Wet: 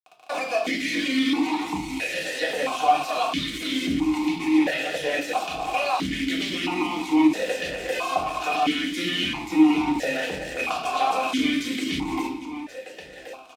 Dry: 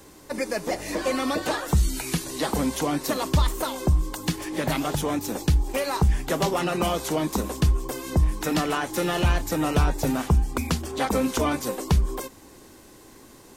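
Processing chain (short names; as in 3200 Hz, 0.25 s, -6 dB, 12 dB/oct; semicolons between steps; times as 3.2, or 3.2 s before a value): tilt shelf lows -8.5 dB; compressor 10:1, threshold -31 dBFS, peak gain reduction 13 dB; bit-crush 6-bit; vibrato 2.1 Hz 26 cents; feedback echo 1.078 s, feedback 35%, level -16 dB; reverb RT60 0.50 s, pre-delay 3 ms, DRR -1 dB; maximiser +22.5 dB; vowel sequencer 1.5 Hz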